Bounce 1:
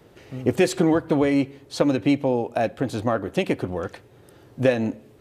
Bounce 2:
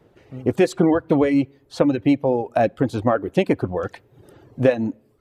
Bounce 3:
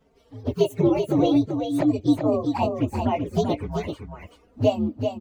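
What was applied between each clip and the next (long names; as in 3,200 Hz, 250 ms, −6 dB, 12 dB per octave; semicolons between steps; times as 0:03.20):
reverb reduction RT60 0.79 s; high-shelf EQ 2,500 Hz −9 dB; automatic gain control gain up to 11.5 dB; level −2.5 dB
partials spread apart or drawn together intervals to 125%; flanger swept by the level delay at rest 4.6 ms, full sweep at −19 dBFS; single-tap delay 386 ms −6 dB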